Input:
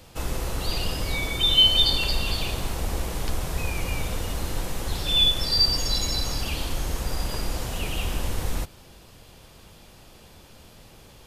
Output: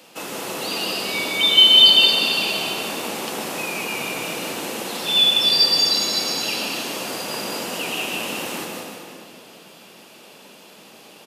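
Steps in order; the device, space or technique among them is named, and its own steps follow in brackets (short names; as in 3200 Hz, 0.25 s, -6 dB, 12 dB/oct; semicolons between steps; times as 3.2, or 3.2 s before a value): stadium PA (HPF 160 Hz 6 dB/oct; bell 2700 Hz +5.5 dB 0.28 oct; loudspeakers at several distances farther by 53 m -11 dB, 65 m -10 dB; reverb RT60 2.4 s, pre-delay 0.118 s, DRR 1.5 dB); HPF 190 Hz 24 dB/oct; gain +3 dB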